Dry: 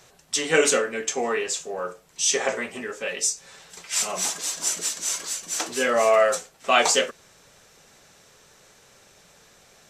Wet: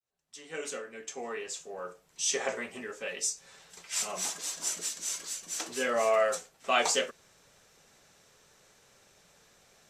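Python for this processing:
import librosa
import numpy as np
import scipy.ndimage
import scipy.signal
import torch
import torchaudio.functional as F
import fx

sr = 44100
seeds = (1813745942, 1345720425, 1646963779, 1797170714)

y = fx.fade_in_head(x, sr, length_s=2.33)
y = fx.dynamic_eq(y, sr, hz=880.0, q=0.73, threshold_db=-44.0, ratio=4.0, max_db=-4, at=(4.84, 5.66))
y = F.gain(torch.from_numpy(y), -7.5).numpy()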